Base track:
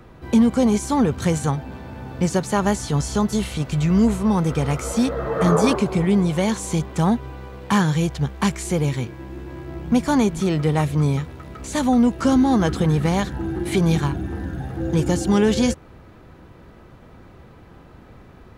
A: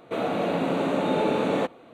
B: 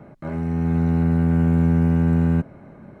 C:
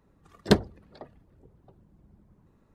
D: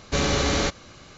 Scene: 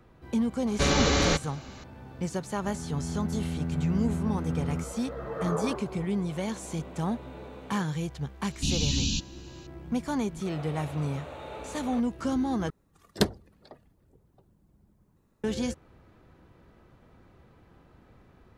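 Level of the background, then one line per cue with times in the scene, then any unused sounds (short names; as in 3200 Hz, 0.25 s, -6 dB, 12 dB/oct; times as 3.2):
base track -11.5 dB
0.67 add D -1 dB
2.42 add B -13.5 dB
6.17 add A -15.5 dB + resonator 85 Hz, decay 0.2 s, mix 90%
8.5 add D -2 dB + FFT band-reject 300–2400 Hz
10.34 add A -14 dB + HPF 520 Hz
12.7 replace with C -5 dB + high shelf 5000 Hz +11.5 dB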